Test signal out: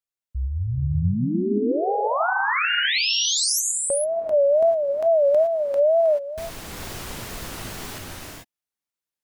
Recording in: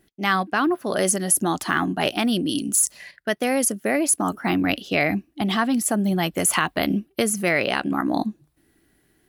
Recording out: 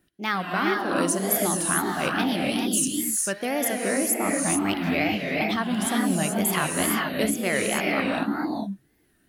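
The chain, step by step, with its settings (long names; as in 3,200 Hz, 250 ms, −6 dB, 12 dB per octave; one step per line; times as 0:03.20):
reverb whose tail is shaped and stops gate 460 ms rising, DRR −1 dB
tape wow and flutter 150 cents
level −5.5 dB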